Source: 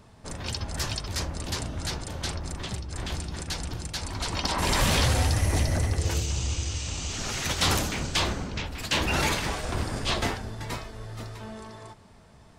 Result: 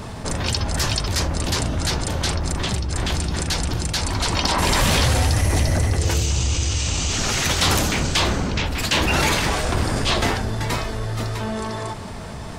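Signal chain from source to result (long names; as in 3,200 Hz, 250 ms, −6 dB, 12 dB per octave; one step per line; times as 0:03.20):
envelope flattener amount 50%
level +4 dB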